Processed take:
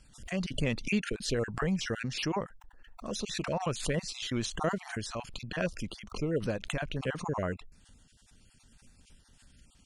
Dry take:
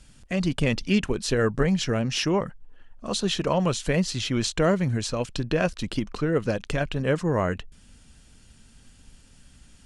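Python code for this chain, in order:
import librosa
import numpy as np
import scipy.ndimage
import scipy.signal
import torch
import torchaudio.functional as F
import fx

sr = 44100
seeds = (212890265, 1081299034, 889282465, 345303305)

y = fx.spec_dropout(x, sr, seeds[0], share_pct=28)
y = fx.pre_swell(y, sr, db_per_s=120.0)
y = y * 10.0 ** (-7.0 / 20.0)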